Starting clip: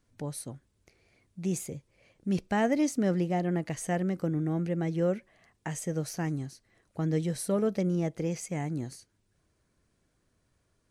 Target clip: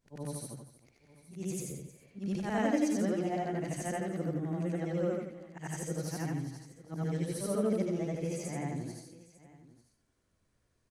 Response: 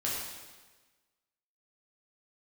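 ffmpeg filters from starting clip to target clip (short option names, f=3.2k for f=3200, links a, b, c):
-af "afftfilt=real='re':imag='-im':win_size=8192:overlap=0.75,aecho=1:1:79|313|895:0.531|0.141|0.112"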